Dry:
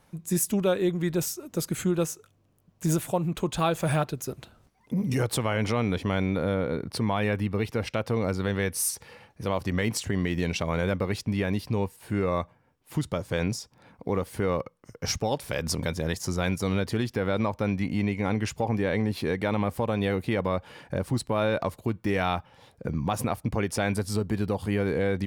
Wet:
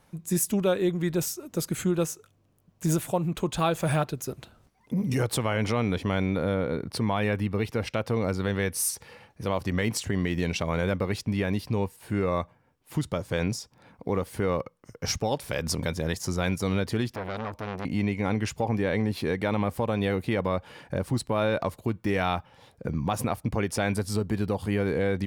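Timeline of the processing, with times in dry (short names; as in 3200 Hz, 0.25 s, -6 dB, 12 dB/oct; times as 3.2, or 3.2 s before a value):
17.08–17.85 core saturation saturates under 1200 Hz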